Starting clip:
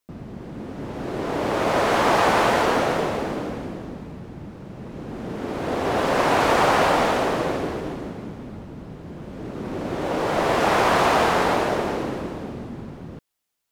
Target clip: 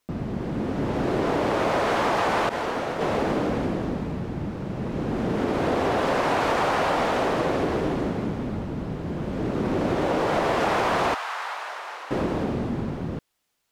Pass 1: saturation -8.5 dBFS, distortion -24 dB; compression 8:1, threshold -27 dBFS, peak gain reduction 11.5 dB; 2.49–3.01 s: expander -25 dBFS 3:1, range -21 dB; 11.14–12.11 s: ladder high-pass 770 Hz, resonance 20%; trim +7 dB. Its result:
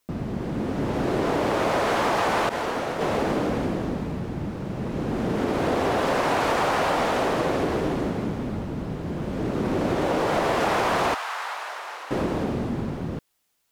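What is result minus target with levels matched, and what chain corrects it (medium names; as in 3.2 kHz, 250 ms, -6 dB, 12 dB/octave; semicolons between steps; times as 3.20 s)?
8 kHz band +3.0 dB
saturation -8.5 dBFS, distortion -24 dB; compression 8:1, threshold -27 dBFS, peak gain reduction 11.5 dB; treble shelf 7.9 kHz -7 dB; 2.49–3.01 s: expander -25 dBFS 3:1, range -21 dB; 11.14–12.11 s: ladder high-pass 770 Hz, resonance 20%; trim +7 dB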